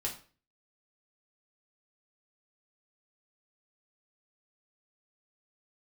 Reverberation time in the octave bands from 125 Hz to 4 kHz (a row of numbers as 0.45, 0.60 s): 0.50, 0.45, 0.40, 0.40, 0.40, 0.35 s